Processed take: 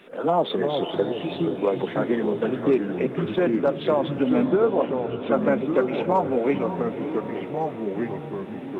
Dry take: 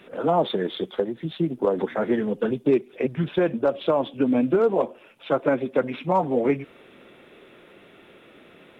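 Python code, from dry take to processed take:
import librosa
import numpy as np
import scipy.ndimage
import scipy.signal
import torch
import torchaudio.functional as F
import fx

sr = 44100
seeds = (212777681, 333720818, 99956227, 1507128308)

y = fx.peak_eq(x, sr, hz=65.0, db=-9.0, octaves=1.9)
y = fx.echo_pitch(y, sr, ms=294, semitones=-3, count=3, db_per_echo=-6.0)
y = fx.lowpass(y, sr, hz=fx.line((4.43, 2200.0), (5.32, 3200.0)), slope=12, at=(4.43, 5.32), fade=0.02)
y = fx.echo_diffused(y, sr, ms=537, feedback_pct=56, wet_db=-12)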